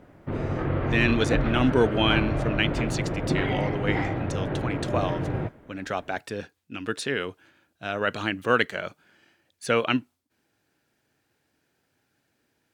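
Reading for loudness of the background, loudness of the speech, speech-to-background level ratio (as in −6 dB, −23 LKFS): −28.0 LKFS, −27.5 LKFS, 0.5 dB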